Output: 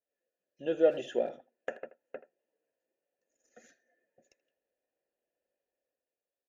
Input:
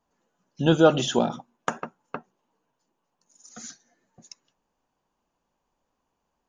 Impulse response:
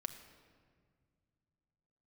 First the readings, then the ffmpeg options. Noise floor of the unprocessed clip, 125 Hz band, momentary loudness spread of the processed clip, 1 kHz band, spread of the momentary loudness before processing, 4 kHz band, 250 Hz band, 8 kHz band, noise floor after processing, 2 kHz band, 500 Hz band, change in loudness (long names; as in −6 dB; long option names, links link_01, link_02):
−79 dBFS, −27.0 dB, 22 LU, −18.0 dB, 23 LU, −19.0 dB, −15.5 dB, −24.5 dB, below −85 dBFS, −12.5 dB, −6.0 dB, −9.0 dB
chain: -filter_complex "[0:a]aeval=exprs='if(lt(val(0),0),0.708*val(0),val(0))':channel_layout=same,asplit=3[link_01][link_02][link_03];[link_01]bandpass=frequency=530:width_type=q:width=8,volume=0dB[link_04];[link_02]bandpass=frequency=1840:width_type=q:width=8,volume=-6dB[link_05];[link_03]bandpass=frequency=2480:width_type=q:width=8,volume=-9dB[link_06];[link_04][link_05][link_06]amix=inputs=3:normalize=0,lowshelf=frequency=88:gain=10.5,acrossover=split=2500[link_07][link_08];[link_07]dynaudnorm=framelen=130:gausssize=11:maxgain=8dB[link_09];[link_09][link_08]amix=inputs=2:normalize=0,aexciter=amount=3.3:drive=5.6:freq=6600,aecho=1:1:2.9:0.32,asplit=2[link_10][link_11];[link_11]adelay=80,highpass=300,lowpass=3400,asoftclip=type=hard:threshold=-19.5dB,volume=-16dB[link_12];[link_10][link_12]amix=inputs=2:normalize=0,volume=-4dB"